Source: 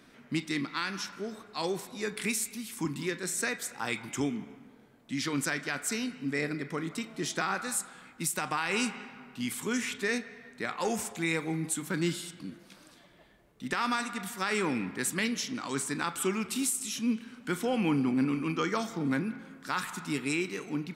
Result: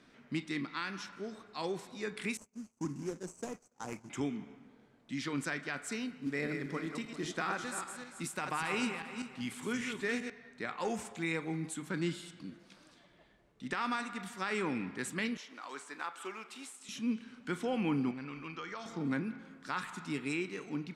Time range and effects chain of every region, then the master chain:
2.37–4.1 median filter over 25 samples + expander -41 dBFS + resonant high shelf 4900 Hz +9 dB, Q 3
6.07–10.3 regenerating reverse delay 0.197 s, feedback 42%, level -6 dB + companded quantiser 6-bit + mismatched tape noise reduction decoder only
15.37–16.89 block floating point 5-bit + HPF 610 Hz + high shelf 2800 Hz -10 dB
18.11–18.86 LPF 5600 Hz + bell 250 Hz -11 dB 1.8 oct + compressor 4:1, threshold -34 dBFS
whole clip: LPF 7400 Hz 12 dB/oct; dynamic EQ 5500 Hz, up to -5 dB, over -48 dBFS, Q 1.2; gain -4.5 dB

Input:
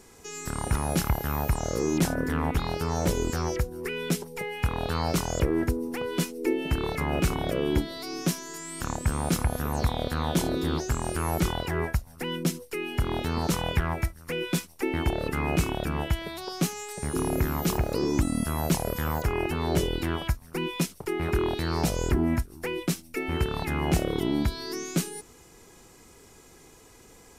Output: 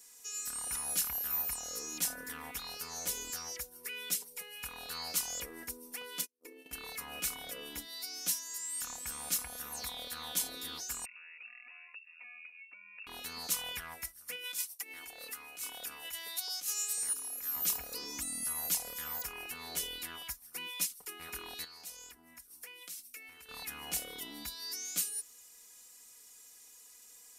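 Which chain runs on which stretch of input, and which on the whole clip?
6.21–6.73 gate -31 dBFS, range -43 dB + bell 380 Hz +11.5 dB 1.7 oct + compressor, threshold -27 dBFS
11.05–13.07 compressor, threshold -40 dBFS + inverted band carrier 2700 Hz + brick-wall FIR high-pass 200 Hz
14.36–17.56 gate with hold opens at -34 dBFS, closes at -40 dBFS + tone controls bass -11 dB, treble +3 dB + negative-ratio compressor -35 dBFS
21.64–23.49 low shelf 360 Hz -5 dB + compressor 10:1, threshold -36 dBFS
whole clip: pre-emphasis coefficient 0.97; comb 4.1 ms, depth 63%

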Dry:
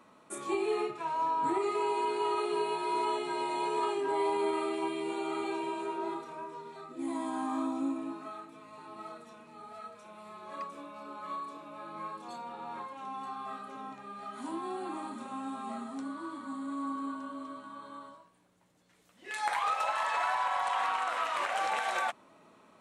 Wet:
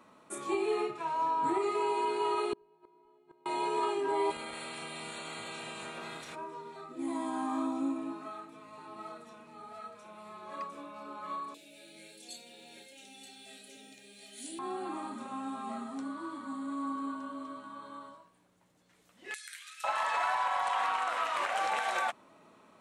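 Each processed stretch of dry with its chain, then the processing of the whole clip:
2.53–3.46 tilt -4 dB/oct + flipped gate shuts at -23 dBFS, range -35 dB
4.3–6.34 spectral limiter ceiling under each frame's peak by 26 dB + compressor 5:1, threshold -39 dBFS
11.54–14.59 Butterworth band-stop 1100 Hz, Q 0.61 + tilt +4 dB/oct
19.34–19.84 elliptic high-pass 1500 Hz, stop band 50 dB + differentiator
whole clip: dry

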